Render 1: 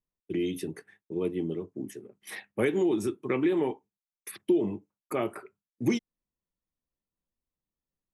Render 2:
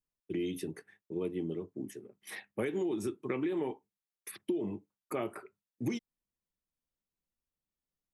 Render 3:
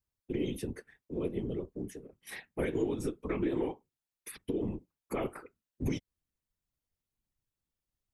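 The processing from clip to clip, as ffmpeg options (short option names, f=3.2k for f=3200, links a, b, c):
-af "acompressor=threshold=-26dB:ratio=6,volume=-3.5dB"
-af "afftfilt=real='hypot(re,im)*cos(2*PI*random(0))':imag='hypot(re,im)*sin(2*PI*random(1))':win_size=512:overlap=0.75,lowshelf=f=100:g=10,volume=6dB"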